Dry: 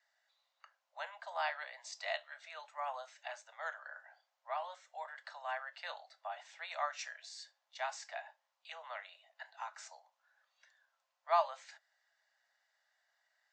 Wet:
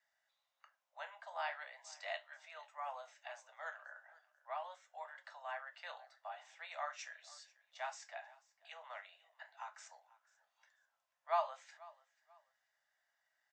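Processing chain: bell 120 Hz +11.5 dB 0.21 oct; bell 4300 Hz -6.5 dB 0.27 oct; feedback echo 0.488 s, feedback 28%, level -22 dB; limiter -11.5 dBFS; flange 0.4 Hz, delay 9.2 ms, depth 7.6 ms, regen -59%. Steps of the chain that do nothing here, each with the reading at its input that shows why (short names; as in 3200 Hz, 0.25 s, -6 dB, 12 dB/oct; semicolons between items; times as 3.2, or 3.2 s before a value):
bell 120 Hz: input band starts at 450 Hz; limiter -11.5 dBFS: input peak -18.5 dBFS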